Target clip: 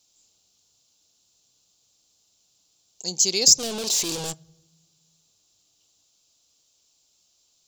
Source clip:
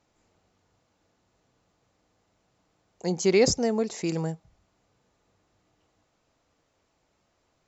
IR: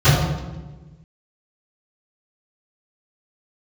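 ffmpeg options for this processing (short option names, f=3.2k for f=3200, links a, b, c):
-filter_complex "[0:a]asplit=3[a][b][c];[a]afade=t=out:st=3.58:d=0.02[d];[b]asplit=2[e][f];[f]highpass=f=720:p=1,volume=36dB,asoftclip=type=tanh:threshold=-15.5dB[g];[e][g]amix=inputs=2:normalize=0,lowpass=f=1.2k:p=1,volume=-6dB,afade=t=in:st=3.58:d=0.02,afade=t=out:st=4.32:d=0.02[h];[c]afade=t=in:st=4.32:d=0.02[i];[d][h][i]amix=inputs=3:normalize=0,aexciter=amount=8.8:drive=8.7:freq=3k,asplit=2[j][k];[1:a]atrim=start_sample=2205,lowshelf=f=450:g=-11.5[l];[k][l]afir=irnorm=-1:irlink=0,volume=-47.5dB[m];[j][m]amix=inputs=2:normalize=0,volume=-10dB"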